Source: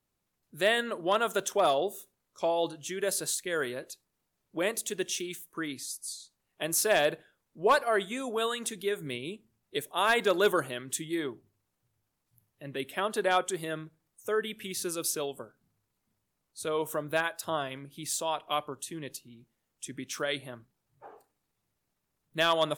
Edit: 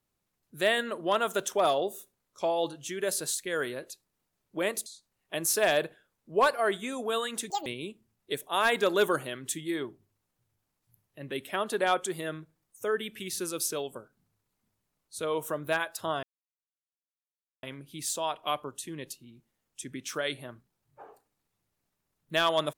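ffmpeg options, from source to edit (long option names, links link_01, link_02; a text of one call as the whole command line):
ffmpeg -i in.wav -filter_complex "[0:a]asplit=5[link_01][link_02][link_03][link_04][link_05];[link_01]atrim=end=4.862[link_06];[link_02]atrim=start=6.138:end=8.784[link_07];[link_03]atrim=start=8.78:end=9.1,asetpts=PTS-STARTPTS,asetrate=88200,aresample=44100[link_08];[link_04]atrim=start=9.096:end=17.67,asetpts=PTS-STARTPTS,afade=type=out:start_time=8.57:duration=0.004:curve=hsin,apad=pad_dur=1.4[link_09];[link_05]atrim=start=17.67,asetpts=PTS-STARTPTS,afade=type=in:duration=0.004:curve=hsin[link_10];[link_06][link_07]acrossfade=duration=0.004:curve1=hsin:curve2=hsin[link_11];[link_11][link_08]acrossfade=duration=0.004:curve1=hsin:curve2=hsin[link_12];[link_09][link_10]concat=n=2:v=0:a=1[link_13];[link_12][link_13]acrossfade=duration=0.004:curve1=hsin:curve2=hsin" out.wav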